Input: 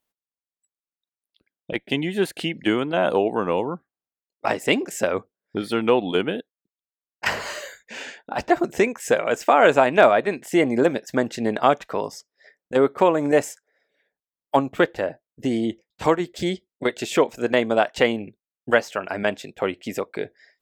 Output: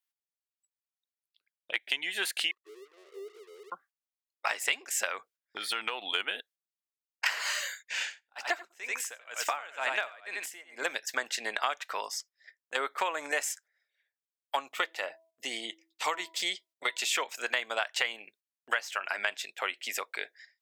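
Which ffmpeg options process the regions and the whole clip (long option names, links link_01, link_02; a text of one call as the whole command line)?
ffmpeg -i in.wav -filter_complex "[0:a]asettb=1/sr,asplit=3[link_01][link_02][link_03];[link_01]atrim=end=2.514[link_04];[link_02]atrim=start=2.51:end=3.72,asetpts=PTS-STARTPTS,afade=type=in:duration=0.004:curve=qsin,afade=type=out:start_time=1.206:duration=0.004:curve=qsin,asuperpass=centerf=400:order=4:qfactor=7,aeval=exprs='sgn(val(0))*max(abs(val(0))-0.00168,0)':channel_layout=same[link_05];[link_03]atrim=start=3.716[link_06];[link_04][link_05]acrossfade=duration=0.004:curve1=hsin:curve2=qsin[link_07];[link_07][link_06]acrossfade=duration=0.004:curve1=qsin:curve2=hsin,asettb=1/sr,asplit=3[link_08][link_09][link_10];[link_08]atrim=end=5.094[link_11];[link_09]atrim=start=5.09:end=6.07,asetpts=PTS-STARTPTS,afade=type=in:duration=0.004:curve=qsin,afade=type=out:start_time=0.976:duration=0.004:curve=qsin,equalizer=frequency=98:width_type=o:width=1:gain=5.5,acompressor=threshold=-20dB:ratio=6:attack=3.2:release=140:knee=1:detection=peak[link_12];[link_10]atrim=start=6.066[link_13];[link_11][link_12]acrossfade=duration=0.004:curve1=hsin:curve2=qsin[link_14];[link_14][link_13]acrossfade=duration=0.004:curve1=qsin:curve2=hsin,asettb=1/sr,asplit=3[link_15][link_16][link_17];[link_15]atrim=end=8.024[link_18];[link_16]atrim=start=8.02:end=10.87,asetpts=PTS-STARTPTS,afade=type=in:duration=0.004:curve=qsin,afade=type=out:start_time=2.846:duration=0.004:curve=qsin,acompressor=mode=upward:threshold=-33dB:ratio=2.5:attack=3.2:release=140:knee=2.83:detection=peak,aecho=1:1:89:0.398,atrim=end_sample=125685,aeval=exprs='val(0)*pow(10,-28*(0.5-0.5*cos(2*PI*2.1*n/s))/20)':channel_layout=same[link_19];[link_17]atrim=start=10.866[link_20];[link_18][link_19]acrossfade=duration=0.004:curve1=hsin:curve2=qsin[link_21];[link_21][link_20]acrossfade=duration=0.004:curve1=qsin:curve2=hsin,asettb=1/sr,asplit=3[link_22][link_23][link_24];[link_22]atrim=end=14.724[link_25];[link_23]atrim=start=14.72:end=17.1,asetpts=PTS-STARTPTS,afade=type=in:duration=0.004:curve=qsin,afade=type=out:start_time=2.376:duration=0.004:curve=qsin,bandreject=frequency=1600:width=6,bandreject=frequency=326.7:width_type=h:width=4,bandreject=frequency=653.4:width_type=h:width=4,bandreject=frequency=980.1:width_type=h:width=4[link_26];[link_24]atrim=start=17.096[link_27];[link_25][link_26]acrossfade=duration=0.004:curve1=hsin:curve2=qsin[link_28];[link_28][link_27]acrossfade=duration=0.004:curve1=qsin:curve2=hsin,agate=range=-10dB:threshold=-49dB:ratio=16:detection=peak,highpass=1500,acompressor=threshold=-30dB:ratio=6,volume=4dB" out.wav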